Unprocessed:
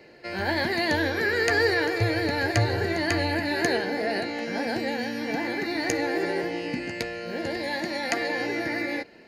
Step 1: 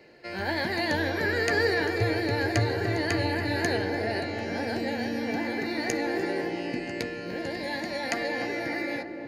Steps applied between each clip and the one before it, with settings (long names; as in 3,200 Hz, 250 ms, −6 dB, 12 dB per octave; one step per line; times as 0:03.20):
feedback echo with a low-pass in the loop 296 ms, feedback 73%, low-pass 870 Hz, level −5.5 dB
level −3 dB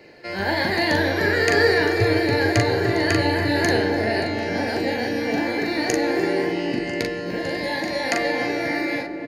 double-tracking delay 41 ms −4 dB
level +5.5 dB